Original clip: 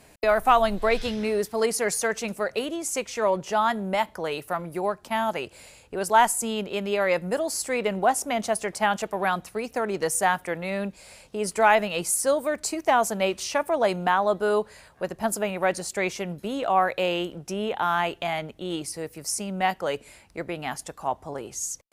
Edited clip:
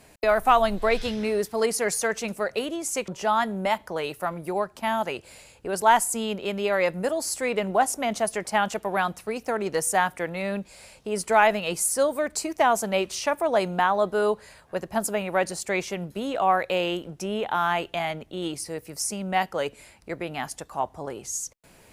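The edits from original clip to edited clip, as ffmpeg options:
-filter_complex "[0:a]asplit=2[a][b];[a]atrim=end=3.082[c];[b]atrim=start=3.358[d];[c][d]acrossfade=d=0.004:c1=hsin:c2=hsin"

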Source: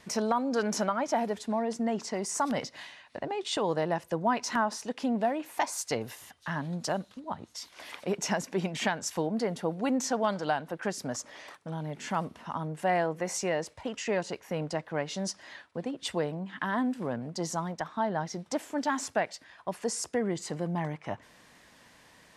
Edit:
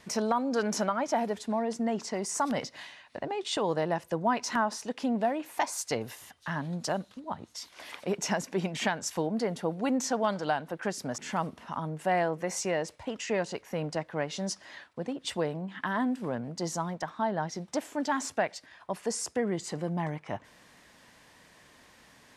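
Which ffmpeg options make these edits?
-filter_complex "[0:a]asplit=2[a][b];[a]atrim=end=11.182[c];[b]atrim=start=11.958[d];[c][d]acrossfade=d=0.004:c1=hsin:c2=hsin"

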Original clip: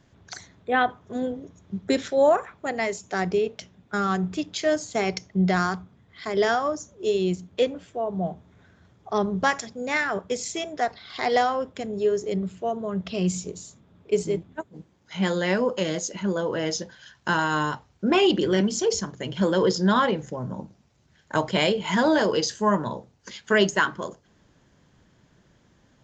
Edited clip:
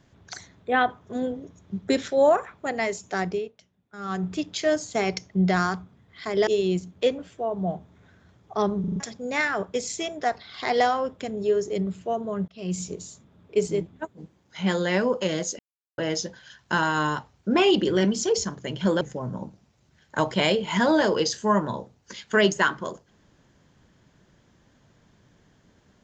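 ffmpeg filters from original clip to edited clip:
-filter_complex "[0:a]asplit=13[a][b][c][d][e][f][g][h][i][j][k][l][m];[a]atrim=end=3.52,asetpts=PTS-STARTPTS,afade=t=out:st=3.05:d=0.47:c=qsin:silence=0.149624[n];[b]atrim=start=3.52:end=3.97,asetpts=PTS-STARTPTS,volume=-16.5dB[o];[c]atrim=start=3.97:end=6.472,asetpts=PTS-STARTPTS,afade=t=in:d=0.47:c=qsin:silence=0.149624[p];[d]atrim=start=7.028:end=9.402[q];[e]atrim=start=9.358:end=9.402[r];[f]atrim=start=9.358:end=9.402[s];[g]atrim=start=9.358:end=9.402[t];[h]atrim=start=9.358:end=9.402[u];[i]atrim=start=9.558:end=13.04,asetpts=PTS-STARTPTS,afade=t=out:st=3.478:d=0.004:c=hsin[v];[j]atrim=start=13.04:end=16.15,asetpts=PTS-STARTPTS,afade=t=in:d=0.39,afade=t=out:st=3.106:d=0.004:c=hsin[w];[k]atrim=start=16.15:end=16.54,asetpts=PTS-STARTPTS,volume=0[x];[l]atrim=start=16.54:end=19.572,asetpts=PTS-STARTPTS,afade=t=in:d=0.004:c=hsin[y];[m]atrim=start=20.178[z];[n][o][p]concat=n=3:v=0:a=1[aa];[aa][q]acrossfade=d=0.004:c1=hsin:c2=hsin[ab];[ab][r]acrossfade=d=0.004:c1=hsin:c2=hsin[ac];[ac][s]acrossfade=d=0.004:c1=hsin:c2=hsin[ad];[ad][t]acrossfade=d=0.004:c1=hsin:c2=hsin[ae];[ae][u]acrossfade=d=0.004:c1=hsin:c2=hsin[af];[v][w][x][y]concat=n=4:v=0:a=1[ag];[af][ag]acrossfade=d=0.004:c1=hsin:c2=hsin[ah];[ah][z]acrossfade=d=0.004:c1=hsin:c2=hsin"

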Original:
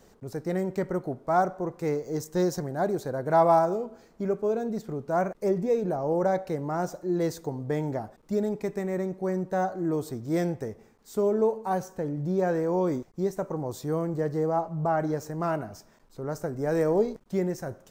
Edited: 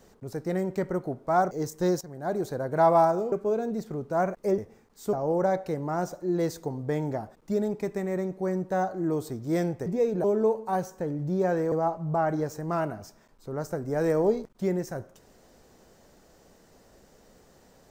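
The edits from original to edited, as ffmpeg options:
-filter_complex "[0:a]asplit=9[a][b][c][d][e][f][g][h][i];[a]atrim=end=1.512[j];[b]atrim=start=2.048:end=2.55,asetpts=PTS-STARTPTS,afade=t=out:st=0.498:d=0.004:c=hsin:silence=0.149624[k];[c]atrim=start=2.55:end=3.862,asetpts=PTS-STARTPTS,afade=t=in:d=0.43:silence=0.149624[l];[d]atrim=start=4.298:end=5.562[m];[e]atrim=start=10.668:end=11.222[n];[f]atrim=start=5.938:end=10.672[o];[g]atrim=start=5.558:end=5.942[p];[h]atrim=start=11.218:end=12.702[q];[i]atrim=start=14.428[r];[k][l]concat=n=2:v=0:a=1[s];[j][s]acrossfade=d=0.004:c1=hsin:c2=hsin[t];[t][m]acrossfade=d=0.004:c1=hsin:c2=hsin[u];[u][n]acrossfade=d=0.004:c1=hsin:c2=hsin[v];[v][o]acrossfade=d=0.004:c1=hsin:c2=hsin[w];[w][p]acrossfade=d=0.004:c1=hsin:c2=hsin[x];[x][q]acrossfade=d=0.004:c1=hsin:c2=hsin[y];[y][r]acrossfade=d=0.004:c1=hsin:c2=hsin"

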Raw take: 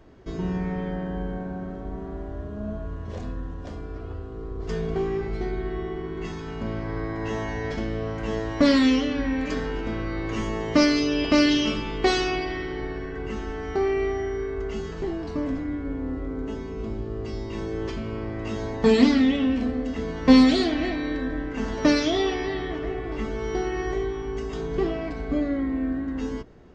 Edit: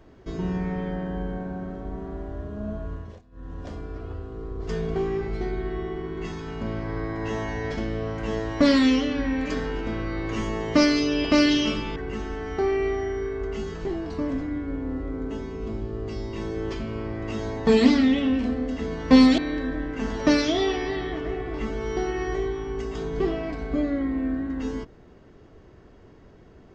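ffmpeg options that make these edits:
-filter_complex "[0:a]asplit=5[a][b][c][d][e];[a]atrim=end=3.22,asetpts=PTS-STARTPTS,afade=t=out:st=2.95:d=0.27:silence=0.0630957[f];[b]atrim=start=3.22:end=3.31,asetpts=PTS-STARTPTS,volume=-24dB[g];[c]atrim=start=3.31:end=11.962,asetpts=PTS-STARTPTS,afade=t=in:d=0.27:silence=0.0630957[h];[d]atrim=start=13.128:end=20.552[i];[e]atrim=start=20.958[j];[f][g][h]concat=n=3:v=0:a=1[k];[k][i]acrossfade=d=0.004:c1=hsin:c2=hsin[l];[l][j]acrossfade=d=0.004:c1=hsin:c2=hsin"

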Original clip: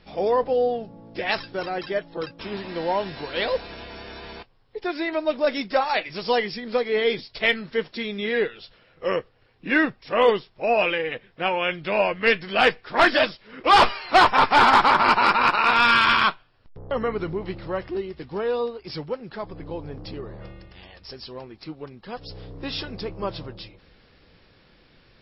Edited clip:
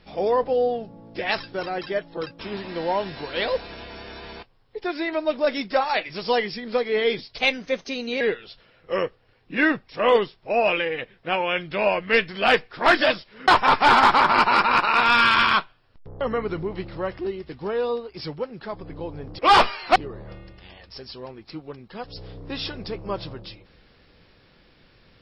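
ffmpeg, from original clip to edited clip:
-filter_complex "[0:a]asplit=6[a][b][c][d][e][f];[a]atrim=end=7.384[g];[b]atrim=start=7.38:end=8.34,asetpts=PTS-STARTPTS,asetrate=51156,aresample=44100[h];[c]atrim=start=8.336:end=13.612[i];[d]atrim=start=14.178:end=20.092[j];[e]atrim=start=13.608:end=14.182[k];[f]atrim=start=20.088[l];[g][h]acrossfade=d=0.004:c1=hsin:c2=hsin[m];[m][i]acrossfade=d=0.004:c1=hsin:c2=hsin[n];[n][j]acrossfade=d=0.004:c1=hsin:c2=hsin[o];[o][k]acrossfade=d=0.004:c1=hsin:c2=hsin[p];[p][l]acrossfade=d=0.004:c1=hsin:c2=hsin"

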